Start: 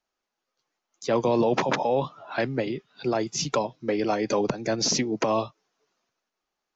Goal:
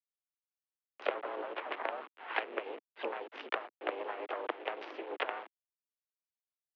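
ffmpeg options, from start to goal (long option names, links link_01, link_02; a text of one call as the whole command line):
ffmpeg -i in.wav -filter_complex "[0:a]acompressor=threshold=-38dB:ratio=10,aeval=exprs='0.0708*(cos(1*acos(clip(val(0)/0.0708,-1,1)))-cos(1*PI/2))+0.0178*(cos(3*acos(clip(val(0)/0.0708,-1,1)))-cos(3*PI/2))':channel_layout=same,asplit=3[link_01][link_02][link_03];[link_02]asetrate=52444,aresample=44100,atempo=0.840896,volume=-11dB[link_04];[link_03]asetrate=55563,aresample=44100,atempo=0.793701,volume=-3dB[link_05];[link_01][link_04][link_05]amix=inputs=3:normalize=0,acrusher=bits=7:dc=4:mix=0:aa=0.000001,highpass=frequency=250:width_type=q:width=0.5412,highpass=frequency=250:width_type=q:width=1.307,lowpass=frequency=3000:width_type=q:width=0.5176,lowpass=frequency=3000:width_type=q:width=0.7071,lowpass=frequency=3000:width_type=q:width=1.932,afreqshift=81,volume=14.5dB" out.wav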